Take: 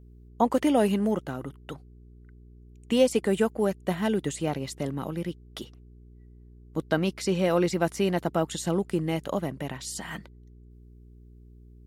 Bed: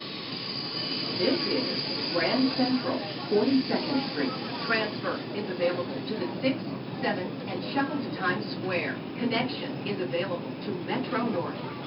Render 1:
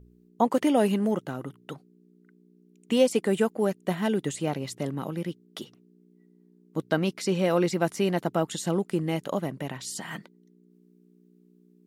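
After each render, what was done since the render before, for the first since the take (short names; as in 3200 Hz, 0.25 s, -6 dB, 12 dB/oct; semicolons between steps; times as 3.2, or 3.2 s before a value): de-hum 60 Hz, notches 2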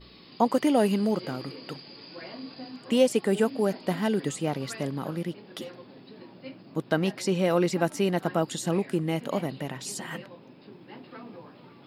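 add bed -16 dB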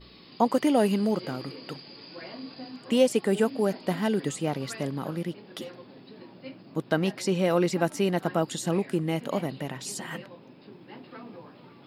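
nothing audible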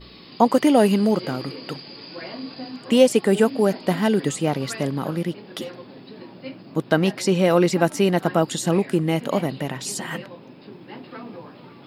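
gain +6.5 dB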